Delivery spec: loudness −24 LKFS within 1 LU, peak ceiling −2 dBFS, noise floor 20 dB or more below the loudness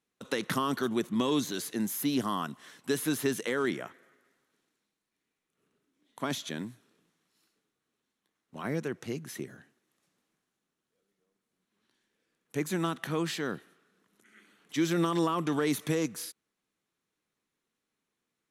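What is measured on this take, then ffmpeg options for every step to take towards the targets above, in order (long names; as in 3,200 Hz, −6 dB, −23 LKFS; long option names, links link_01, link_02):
integrated loudness −32.0 LKFS; sample peak −16.0 dBFS; target loudness −24.0 LKFS
→ -af "volume=8dB"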